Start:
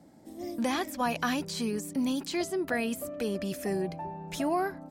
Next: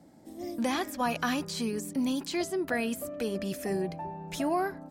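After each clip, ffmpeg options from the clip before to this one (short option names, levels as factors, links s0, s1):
-af "bandreject=f=205.5:t=h:w=4,bandreject=f=411:t=h:w=4,bandreject=f=616.5:t=h:w=4,bandreject=f=822:t=h:w=4,bandreject=f=1027.5:t=h:w=4,bandreject=f=1233:t=h:w=4,bandreject=f=1438.5:t=h:w=4,bandreject=f=1644:t=h:w=4,bandreject=f=1849.5:t=h:w=4"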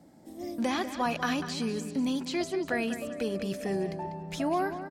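-filter_complex "[0:a]acrossover=split=7800[s0][s1];[s0]aecho=1:1:195|390|585|780:0.282|0.0986|0.0345|0.0121[s2];[s1]acompressor=threshold=0.00126:ratio=6[s3];[s2][s3]amix=inputs=2:normalize=0"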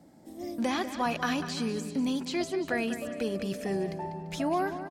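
-af "aecho=1:1:342:0.106"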